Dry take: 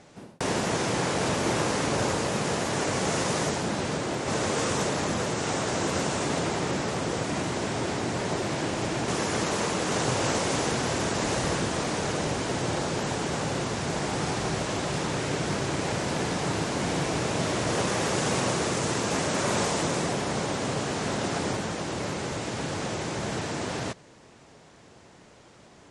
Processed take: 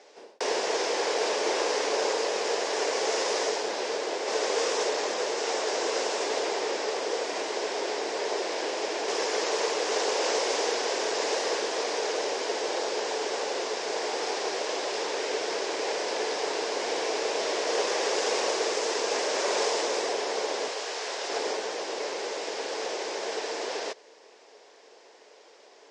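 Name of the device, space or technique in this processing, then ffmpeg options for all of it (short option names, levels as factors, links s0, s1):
phone speaker on a table: -filter_complex "[0:a]highpass=f=410:w=0.5412,highpass=f=410:w=1.3066,equalizer=f=440:t=q:w=4:g=7,equalizer=f=1300:t=q:w=4:g=-6,equalizer=f=5100:t=q:w=4:g=5,lowpass=f=7000:w=0.5412,lowpass=f=7000:w=1.3066,asettb=1/sr,asplit=3[s0][s1][s2];[s0]atrim=end=20.684[s3];[s1]atrim=start=20.68:end=21.3,asetpts=PTS-STARTPTS,afade=t=in:d=0.004:c=qsin,afade=t=out:st=0.616:d=0.004:c=qsin,highpass=f=820:p=1[s4];[s2]atrim=start=21.296[s5];[s3][s4]acrossfade=d=0.004:c1=hsin:c2=qsin[s6];[s6][s5]acrossfade=d=0.004:c1=qsin:c2=hsin"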